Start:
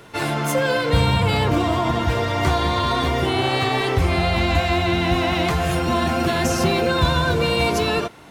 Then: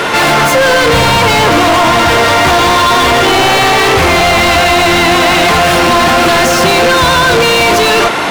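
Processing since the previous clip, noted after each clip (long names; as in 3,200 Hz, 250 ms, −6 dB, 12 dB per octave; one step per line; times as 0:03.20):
mid-hump overdrive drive 41 dB, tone 3,500 Hz, clips at −5 dBFS
level +3.5 dB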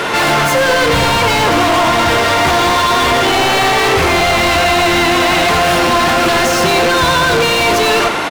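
single-tap delay 89 ms −11 dB
level −4 dB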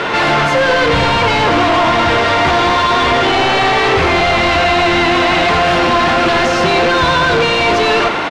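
low-pass filter 4,300 Hz 12 dB per octave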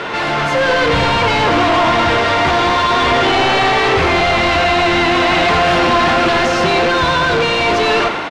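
automatic gain control
level −5.5 dB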